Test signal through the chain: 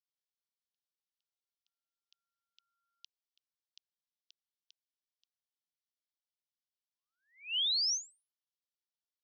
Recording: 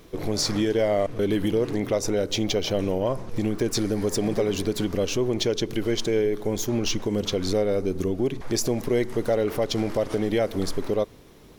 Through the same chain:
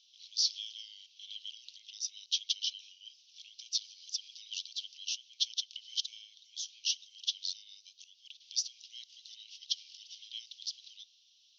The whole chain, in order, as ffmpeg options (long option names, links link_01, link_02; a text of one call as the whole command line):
ffmpeg -i in.wav -af "asuperpass=centerf=4200:order=12:qfactor=1.3,volume=-2dB" out.wav